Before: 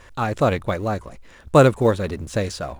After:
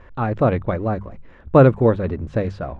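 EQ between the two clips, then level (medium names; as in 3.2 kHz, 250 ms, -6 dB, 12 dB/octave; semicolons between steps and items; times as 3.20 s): low-pass 2.1 kHz 12 dB/octave; bass shelf 500 Hz +6.5 dB; hum notches 50/100/150/200 Hz; -2.0 dB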